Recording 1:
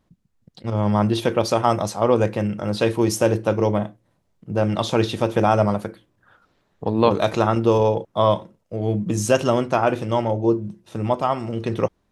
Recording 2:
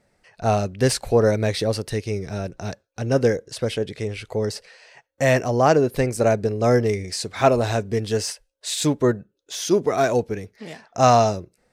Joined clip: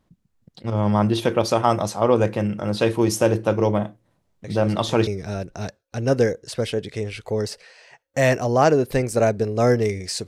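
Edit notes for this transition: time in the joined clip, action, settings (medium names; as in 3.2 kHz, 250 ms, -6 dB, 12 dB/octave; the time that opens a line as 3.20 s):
recording 1
4.44 s: add recording 2 from 1.48 s 0.63 s -13.5 dB
5.07 s: go over to recording 2 from 2.11 s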